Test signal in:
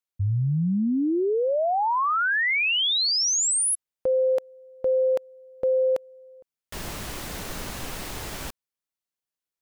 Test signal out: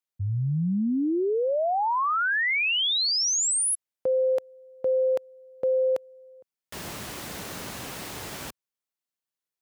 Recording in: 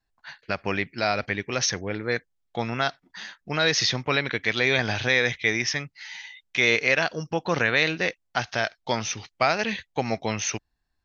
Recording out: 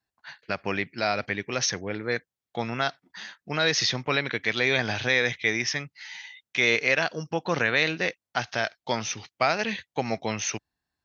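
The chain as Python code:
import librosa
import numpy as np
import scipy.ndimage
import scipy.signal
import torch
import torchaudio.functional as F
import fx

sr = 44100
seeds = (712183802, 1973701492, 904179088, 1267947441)

y = scipy.signal.sosfilt(scipy.signal.butter(2, 95.0, 'highpass', fs=sr, output='sos'), x)
y = y * 10.0 ** (-1.5 / 20.0)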